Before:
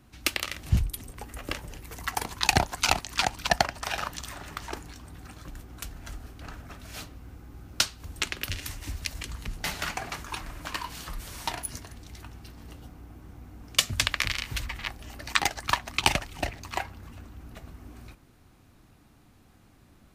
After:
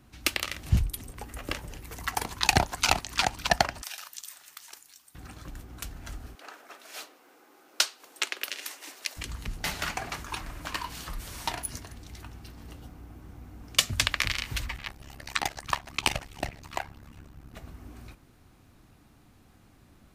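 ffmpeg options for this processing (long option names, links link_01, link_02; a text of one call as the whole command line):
ffmpeg -i in.wav -filter_complex "[0:a]asettb=1/sr,asplit=3[link_01][link_02][link_03];[link_01]atrim=end=3.824[link_04];[link_02]atrim=start=3.82:end=5.15,asetpts=PTS-STARTPTS,afade=type=in:duration=0.004:curve=qsin,afade=type=out:start_time=1.326:duration=0.004:curve=qsin,aderivative[link_05];[link_03]atrim=start=5.146[link_06];[link_04][link_05]acrossfade=duration=0.004:curve1=hsin:curve2=qsin[link_07];[link_07][link_06]acrossfade=duration=0.004:curve1=qsin:curve2=hsin,asettb=1/sr,asplit=3[link_08][link_09][link_10];[link_08]atrim=end=6.354[link_11];[link_09]atrim=start=6.35:end=9.17,asetpts=PTS-STARTPTS,afade=type=in:duration=0.004:curve=qsin,afade=type=out:start_time=2.816:duration=0.004:curve=qsin,highpass=frequency=380:width=0.5412,highpass=frequency=380:width=1.3066[link_12];[link_10]atrim=start=9.166[link_13];[link_11][link_12]acrossfade=duration=0.004:curve1=hsin:curve2=qsin[link_14];[link_14][link_13]acrossfade=duration=0.004:curve1=qsin:curve2=hsin,asettb=1/sr,asplit=3[link_15][link_16][link_17];[link_15]atrim=end=14.764[link_18];[link_16]atrim=start=14.76:end=17.54,asetpts=PTS-STARTPTS,afade=type=in:duration=0.004:curve=qsin,afade=type=out:start_time=2.776:duration=0.004:curve=qsin,tremolo=f=70:d=0.919[link_19];[link_17]atrim=start=17.536[link_20];[link_18][link_19]acrossfade=duration=0.004:curve1=hsin:curve2=qsin[link_21];[link_21][link_20]acrossfade=duration=0.004:curve1=qsin:curve2=hsin" out.wav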